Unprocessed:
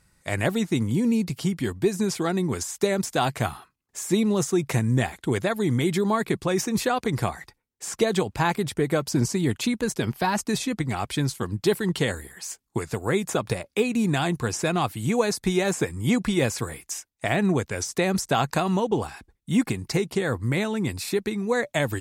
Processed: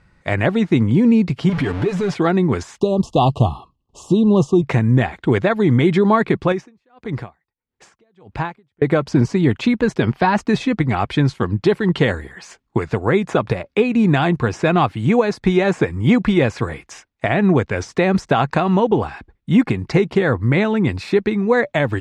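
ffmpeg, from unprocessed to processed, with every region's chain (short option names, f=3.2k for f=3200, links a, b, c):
-filter_complex "[0:a]asettb=1/sr,asplit=3[a][b][c];[a]atrim=end=1.494[d];[b]atrim=start=1.49:end=2.14,asetpts=PTS-STARTPTS,afade=t=in:d=0.004:c=qsin,afade=t=out:st=0.646:d=0.004:c=qsin,aeval=exprs='val(0)+0.5*0.0398*sgn(val(0))':c=same,aecho=1:1:6.9:0.75,atrim=end_sample=28665,acompressor=threshold=-27dB:ratio=2.5:attack=3.2:release=140:knee=1:detection=peak[e];[c]atrim=start=2.136[f];[d][e]acrossfade=d=0.004:c1=hsin:c2=qsin[g];[g][f]acrossfade=d=0.004:c1=qsin:c2=hsin,asettb=1/sr,asplit=3[h][i][j];[h]atrim=end=2.804[k];[i]atrim=start=2.8:end=4.62,asetpts=PTS-STARTPTS,afade=t=in:d=0.004:c=qsin,afade=t=out:st=1.816:d=0.004:c=qsin,asuperstop=centerf=1800:order=20:qfactor=1.2,lowshelf=f=100:g=11.5[l];[j]atrim=start=4.616[m];[k][l]acrossfade=d=0.004:c1=hsin:c2=qsin[n];[n][m]acrossfade=d=0.004:c1=qsin:c2=hsin,asettb=1/sr,asplit=3[o][p][q];[o]atrim=end=6.524[r];[p]atrim=start=6.52:end=8.82,asetpts=PTS-STARTPTS,afade=t=in:d=0.004:c=qsin,afade=t=out:st=2.296:d=0.004:c=qsin,acompressor=threshold=-38dB:ratio=1.5:attack=3.2:release=140:knee=1:detection=peak,aeval=exprs='val(0)*pow(10,-40*(0.5-0.5*cos(2*PI*1.6*n/s))/20)':c=same[s];[q]atrim=start=8.816[t];[r][s]acrossfade=d=0.004:c1=hsin:c2=qsin[u];[u][t]acrossfade=d=0.004:c1=qsin:c2=hsin,lowpass=2.7k,alimiter=limit=-14dB:level=0:latency=1:release=295,volume=9dB"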